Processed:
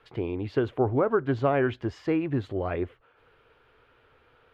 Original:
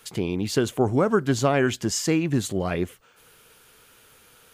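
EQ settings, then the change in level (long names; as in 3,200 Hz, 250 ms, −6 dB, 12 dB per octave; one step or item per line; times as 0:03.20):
high-frequency loss of the air 380 metres
parametric band 190 Hz −14.5 dB 0.56 octaves
high-shelf EQ 3,300 Hz −8.5 dB
0.0 dB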